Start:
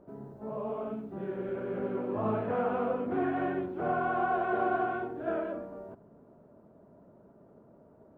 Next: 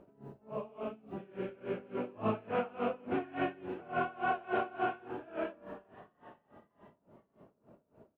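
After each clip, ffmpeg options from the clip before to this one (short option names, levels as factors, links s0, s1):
-filter_complex "[0:a]equalizer=f=2700:w=1.8:g=13,asplit=5[s0][s1][s2][s3][s4];[s1]adelay=477,afreqshift=120,volume=0.106[s5];[s2]adelay=954,afreqshift=240,volume=0.055[s6];[s3]adelay=1431,afreqshift=360,volume=0.0285[s7];[s4]adelay=1908,afreqshift=480,volume=0.015[s8];[s0][s5][s6][s7][s8]amix=inputs=5:normalize=0,aeval=exprs='val(0)*pow(10,-23*(0.5-0.5*cos(2*PI*3.5*n/s))/20)':c=same"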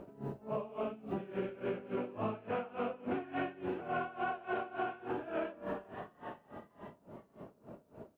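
-af "acompressor=threshold=0.00794:ratio=16,volume=2.82"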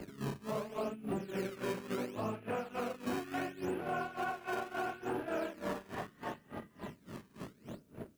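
-filter_complex "[0:a]acrossover=split=110|420|1300[s0][s1][s2][s3];[s1]acrusher=samples=18:mix=1:aa=0.000001:lfo=1:lforange=28.8:lforate=0.72[s4];[s2]aeval=exprs='sgn(val(0))*max(abs(val(0))-0.00158,0)':c=same[s5];[s0][s4][s5][s3]amix=inputs=4:normalize=0,alimiter=level_in=3.35:limit=0.0631:level=0:latency=1:release=173,volume=0.299,volume=2.24"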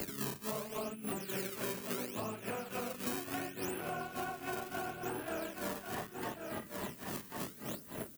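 -filter_complex "[0:a]aecho=1:1:1088:0.237,acrossover=split=210|810[s0][s1][s2];[s0]acompressor=threshold=0.00141:ratio=4[s3];[s1]acompressor=threshold=0.00282:ratio=4[s4];[s2]acompressor=threshold=0.00178:ratio=4[s5];[s3][s4][s5]amix=inputs=3:normalize=0,aemphasis=mode=production:type=75kf,volume=2.37"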